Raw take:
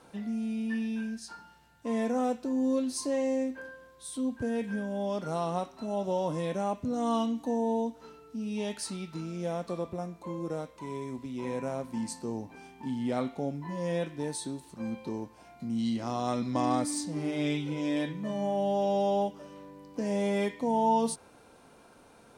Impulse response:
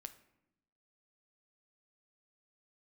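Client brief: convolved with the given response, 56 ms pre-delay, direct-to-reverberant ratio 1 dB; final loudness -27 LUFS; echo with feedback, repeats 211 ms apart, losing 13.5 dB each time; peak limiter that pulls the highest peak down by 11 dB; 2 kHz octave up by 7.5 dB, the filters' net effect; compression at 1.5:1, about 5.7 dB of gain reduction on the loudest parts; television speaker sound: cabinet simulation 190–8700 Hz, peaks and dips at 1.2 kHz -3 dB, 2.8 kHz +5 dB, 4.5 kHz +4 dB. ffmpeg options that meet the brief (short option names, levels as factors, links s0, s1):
-filter_complex "[0:a]equalizer=f=2000:t=o:g=8,acompressor=threshold=0.0158:ratio=1.5,alimiter=level_in=1.88:limit=0.0631:level=0:latency=1,volume=0.531,aecho=1:1:211|422:0.211|0.0444,asplit=2[s0][s1];[1:a]atrim=start_sample=2205,adelay=56[s2];[s1][s2]afir=irnorm=-1:irlink=0,volume=1.68[s3];[s0][s3]amix=inputs=2:normalize=0,highpass=f=190:w=0.5412,highpass=f=190:w=1.3066,equalizer=f=1200:t=q:w=4:g=-3,equalizer=f=2800:t=q:w=4:g=5,equalizer=f=4500:t=q:w=4:g=4,lowpass=f=8700:w=0.5412,lowpass=f=8700:w=1.3066,volume=3.16"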